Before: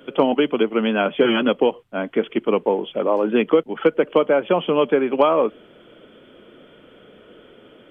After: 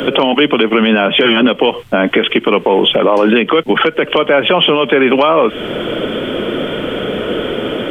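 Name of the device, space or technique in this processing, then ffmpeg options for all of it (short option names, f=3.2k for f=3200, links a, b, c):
mastering chain: -filter_complex "[0:a]equalizer=f=1.4k:t=o:w=0.77:g=-1.5,acrossover=split=130|1300[a][b][c];[a]acompressor=threshold=-54dB:ratio=4[d];[b]acompressor=threshold=-30dB:ratio=4[e];[c]acompressor=threshold=-32dB:ratio=4[f];[d][e][f]amix=inputs=3:normalize=0,acompressor=threshold=-33dB:ratio=2.5,alimiter=level_in=30dB:limit=-1dB:release=50:level=0:latency=1,volume=-1dB"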